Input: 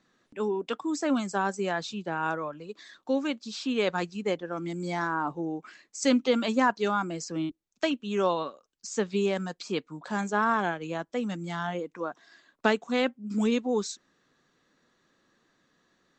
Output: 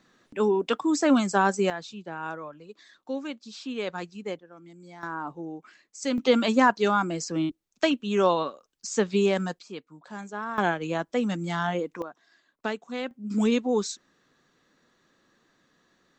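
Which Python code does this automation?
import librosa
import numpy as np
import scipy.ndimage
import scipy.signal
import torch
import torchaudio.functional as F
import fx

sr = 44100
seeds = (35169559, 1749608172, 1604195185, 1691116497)

y = fx.gain(x, sr, db=fx.steps((0.0, 6.0), (1.7, -5.0), (4.39, -15.0), (5.03, -4.5), (6.18, 4.0), (9.59, -8.5), (10.58, 4.5), (12.02, -6.5), (13.11, 2.5)))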